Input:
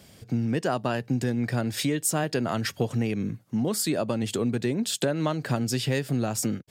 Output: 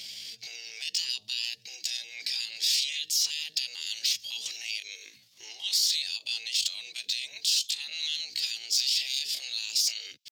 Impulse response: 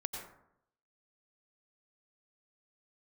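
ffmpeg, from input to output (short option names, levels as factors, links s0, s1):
-filter_complex "[0:a]afftfilt=real='re*lt(hypot(re,im),0.0631)':imag='im*lt(hypot(re,im),0.0631)':win_size=1024:overlap=0.75,highpass=f=120:p=1,highshelf=f=6800:t=q:w=1.5:g=-12,acrossover=split=690|2600|7800[s0][s1][s2][s3];[s0]acompressor=threshold=0.00141:ratio=4[s4];[s1]acompressor=threshold=0.00178:ratio=4[s5];[s2]acompressor=threshold=0.0126:ratio=4[s6];[s3]acompressor=threshold=0.002:ratio=4[s7];[s4][s5][s6][s7]amix=inputs=4:normalize=0,acrossover=split=190|4200[s8][s9][s10];[s9]alimiter=level_in=5.31:limit=0.0631:level=0:latency=1:release=48,volume=0.188[s11];[s10]asoftclip=type=tanh:threshold=0.0106[s12];[s8][s11][s12]amix=inputs=3:normalize=0,atempo=0.65,aexciter=amount=9:drive=8.3:freq=2100,volume=0.422"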